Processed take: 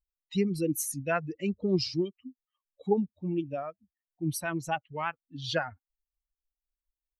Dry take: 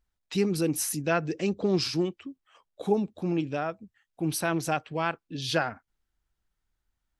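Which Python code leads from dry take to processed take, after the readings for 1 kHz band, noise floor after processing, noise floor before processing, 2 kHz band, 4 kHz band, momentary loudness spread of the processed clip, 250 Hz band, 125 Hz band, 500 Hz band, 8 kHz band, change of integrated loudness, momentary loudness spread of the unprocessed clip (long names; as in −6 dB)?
−3.5 dB, below −85 dBFS, −83 dBFS, −3.0 dB, −4.0 dB, 11 LU, −2.5 dB, −2.5 dB, −3.0 dB, −3.5 dB, −3.0 dB, 8 LU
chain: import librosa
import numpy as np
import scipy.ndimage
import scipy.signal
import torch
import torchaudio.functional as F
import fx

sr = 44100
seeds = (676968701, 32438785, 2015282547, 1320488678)

y = fx.bin_expand(x, sr, power=2.0)
y = fx.low_shelf(y, sr, hz=220.0, db=4.0)
y = fx.record_warp(y, sr, rpm=45.0, depth_cents=100.0)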